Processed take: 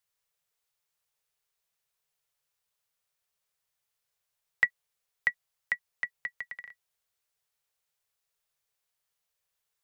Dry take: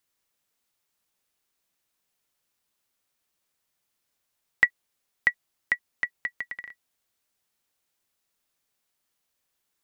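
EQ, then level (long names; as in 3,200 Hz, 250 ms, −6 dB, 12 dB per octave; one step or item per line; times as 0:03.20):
elliptic band-stop filter 170–410 Hz
−4.5 dB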